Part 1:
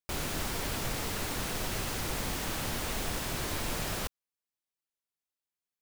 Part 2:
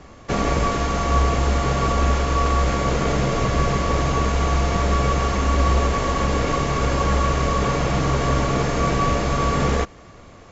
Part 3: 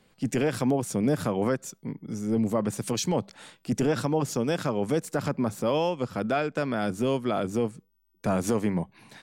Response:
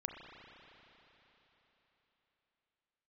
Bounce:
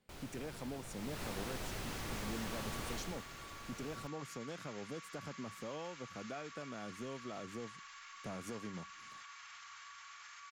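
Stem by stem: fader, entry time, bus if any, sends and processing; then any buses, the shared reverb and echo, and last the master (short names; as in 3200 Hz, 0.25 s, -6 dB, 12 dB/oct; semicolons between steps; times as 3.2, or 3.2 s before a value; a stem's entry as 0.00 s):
0.87 s -16.5 dB -> 1.24 s -8 dB -> 2.93 s -8 dB -> 3.29 s -18.5 dB, 0.00 s, no send, slew limiter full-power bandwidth 68 Hz
-17.5 dB, 1.60 s, no send, inverse Chebyshev high-pass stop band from 620 Hz, stop band 40 dB; limiter -27.5 dBFS, peak gain reduction 11 dB
-15.0 dB, 0.00 s, no send, compressor 2:1, threshold -30 dBFS, peak gain reduction 6 dB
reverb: off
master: dry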